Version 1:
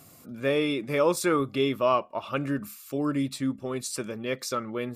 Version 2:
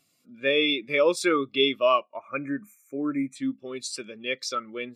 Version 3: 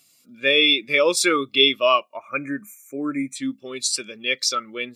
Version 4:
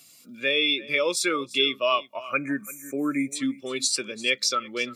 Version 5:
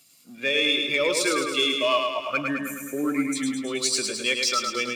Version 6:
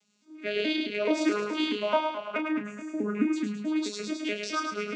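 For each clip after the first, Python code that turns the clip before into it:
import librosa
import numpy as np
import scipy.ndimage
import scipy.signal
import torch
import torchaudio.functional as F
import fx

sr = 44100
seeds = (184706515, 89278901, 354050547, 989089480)

y1 = fx.spec_box(x, sr, start_s=2.16, length_s=1.2, low_hz=2500.0, high_hz=5800.0, gain_db=-28)
y1 = fx.weighting(y1, sr, curve='D')
y1 = fx.spectral_expand(y1, sr, expansion=1.5)
y1 = F.gain(torch.from_numpy(y1), -1.0).numpy()
y2 = fx.high_shelf(y1, sr, hz=2300.0, db=11.5)
y2 = F.gain(torch.from_numpy(y2), 1.5).numpy()
y3 = fx.rider(y2, sr, range_db=3, speed_s=0.5)
y3 = y3 + 10.0 ** (-20.5 / 20.0) * np.pad(y3, (int(339 * sr / 1000.0), 0))[:len(y3)]
y3 = fx.band_squash(y3, sr, depth_pct=40)
y3 = F.gain(torch.from_numpy(y3), -3.5).numpy()
y4 = fx.leveller(y3, sr, passes=1)
y4 = fx.echo_feedback(y4, sr, ms=106, feedback_pct=59, wet_db=-4.5)
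y4 = F.gain(torch.from_numpy(y4), -3.5).numpy()
y5 = fx.vocoder_arp(y4, sr, chord='bare fifth', root=56, every_ms=214)
y5 = fx.doubler(y5, sr, ms=33.0, db=-7.5)
y5 = F.gain(torch.from_numpy(y5), -3.5).numpy()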